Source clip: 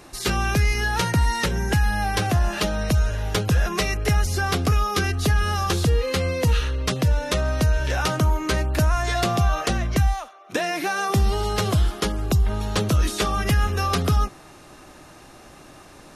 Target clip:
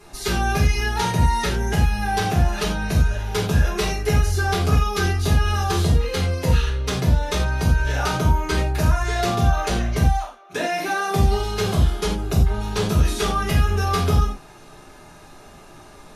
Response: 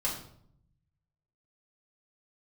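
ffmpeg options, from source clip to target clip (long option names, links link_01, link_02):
-filter_complex "[1:a]atrim=start_sample=2205,atrim=end_sample=3969,asetrate=34839,aresample=44100[link_01];[0:a][link_01]afir=irnorm=-1:irlink=0,volume=-6.5dB"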